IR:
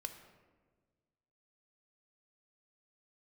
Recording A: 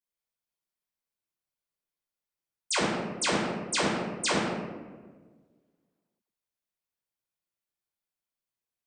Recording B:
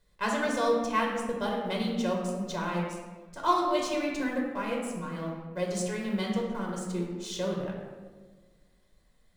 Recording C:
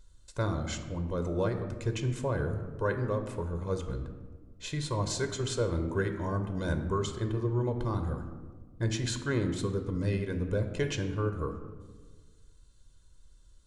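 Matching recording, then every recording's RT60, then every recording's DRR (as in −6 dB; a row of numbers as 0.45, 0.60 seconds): C; 1.5, 1.5, 1.5 seconds; −7.0, −1.5, 6.5 decibels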